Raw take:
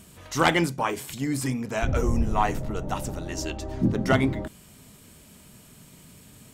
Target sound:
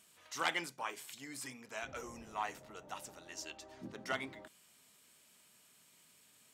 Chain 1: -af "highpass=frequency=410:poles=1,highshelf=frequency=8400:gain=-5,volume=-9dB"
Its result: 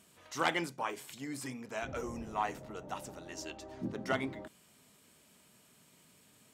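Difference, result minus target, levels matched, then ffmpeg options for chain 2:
500 Hz band +3.5 dB
-af "highpass=frequency=1500:poles=1,highshelf=frequency=8400:gain=-5,volume=-9dB"

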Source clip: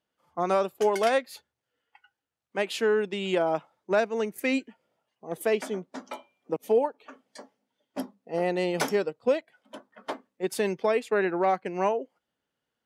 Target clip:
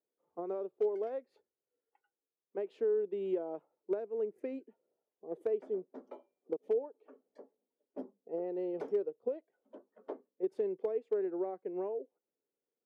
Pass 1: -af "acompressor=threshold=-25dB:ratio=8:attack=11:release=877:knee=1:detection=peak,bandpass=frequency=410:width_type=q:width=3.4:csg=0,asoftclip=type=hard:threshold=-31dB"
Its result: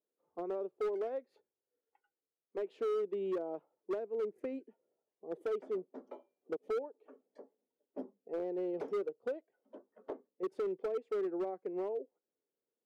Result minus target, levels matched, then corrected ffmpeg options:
hard clipping: distortion +24 dB
-af "acompressor=threshold=-25dB:ratio=8:attack=11:release=877:knee=1:detection=peak,bandpass=frequency=410:width_type=q:width=3.4:csg=0,asoftclip=type=hard:threshold=-24dB"

